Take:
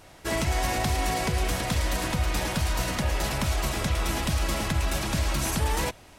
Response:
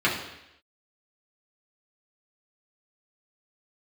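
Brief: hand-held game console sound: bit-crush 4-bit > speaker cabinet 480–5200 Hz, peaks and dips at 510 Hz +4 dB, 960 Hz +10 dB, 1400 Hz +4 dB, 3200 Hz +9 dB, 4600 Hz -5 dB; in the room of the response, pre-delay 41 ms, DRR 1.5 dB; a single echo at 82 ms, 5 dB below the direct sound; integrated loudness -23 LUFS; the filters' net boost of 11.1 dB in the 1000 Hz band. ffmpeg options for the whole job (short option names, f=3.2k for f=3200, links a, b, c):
-filter_complex "[0:a]equalizer=f=1k:t=o:g=6,aecho=1:1:82:0.562,asplit=2[a][b];[1:a]atrim=start_sample=2205,adelay=41[c];[b][c]afir=irnorm=-1:irlink=0,volume=-17.5dB[d];[a][d]amix=inputs=2:normalize=0,acrusher=bits=3:mix=0:aa=0.000001,highpass=480,equalizer=f=510:t=q:w=4:g=4,equalizer=f=960:t=q:w=4:g=10,equalizer=f=1.4k:t=q:w=4:g=4,equalizer=f=3.2k:t=q:w=4:g=9,equalizer=f=4.6k:t=q:w=4:g=-5,lowpass=f=5.2k:w=0.5412,lowpass=f=5.2k:w=1.3066,volume=-3dB"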